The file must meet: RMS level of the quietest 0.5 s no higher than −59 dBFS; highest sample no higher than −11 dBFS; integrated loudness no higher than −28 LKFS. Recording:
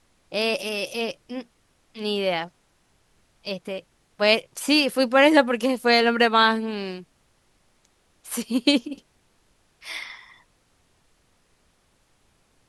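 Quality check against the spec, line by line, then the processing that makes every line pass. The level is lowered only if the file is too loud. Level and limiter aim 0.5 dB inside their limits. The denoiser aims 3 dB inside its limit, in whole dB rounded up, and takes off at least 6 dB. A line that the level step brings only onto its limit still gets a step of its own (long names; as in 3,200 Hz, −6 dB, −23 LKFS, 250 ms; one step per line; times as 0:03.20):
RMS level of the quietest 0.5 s −65 dBFS: in spec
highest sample −4.0 dBFS: out of spec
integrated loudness −22.0 LKFS: out of spec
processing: level −6.5 dB
brickwall limiter −11.5 dBFS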